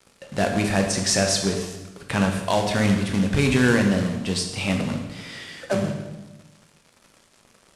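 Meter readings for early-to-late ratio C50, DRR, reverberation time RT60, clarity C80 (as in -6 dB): 5.5 dB, 2.5 dB, 1.1 s, 7.5 dB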